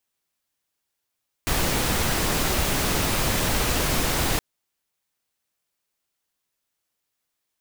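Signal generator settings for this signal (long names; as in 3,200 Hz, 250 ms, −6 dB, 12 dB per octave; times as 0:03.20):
noise pink, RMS −23 dBFS 2.92 s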